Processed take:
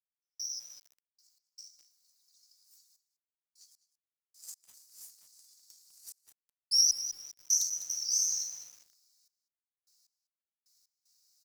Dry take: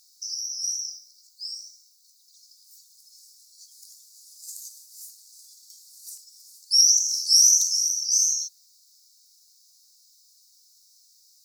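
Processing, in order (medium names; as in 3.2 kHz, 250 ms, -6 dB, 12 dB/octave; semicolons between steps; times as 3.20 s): companding laws mixed up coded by A; dynamic bell 7.7 kHz, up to -6 dB, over -32 dBFS, Q 1.1; trance gate "..x...x.xxxxxxx." 76 bpm -60 dB; delay 203 ms -18 dB; bit-crushed delay 202 ms, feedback 35%, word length 7-bit, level -11 dB; trim -3.5 dB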